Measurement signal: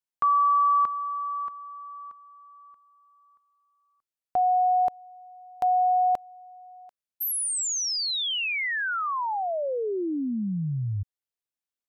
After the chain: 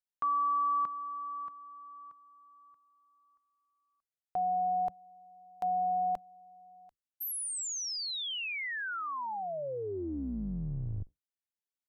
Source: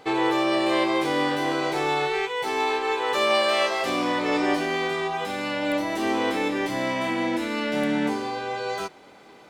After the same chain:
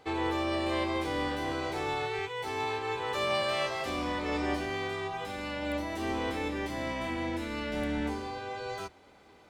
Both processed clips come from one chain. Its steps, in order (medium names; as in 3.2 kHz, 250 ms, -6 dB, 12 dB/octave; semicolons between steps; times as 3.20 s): octave divider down 2 oct, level -4 dB; trim -8.5 dB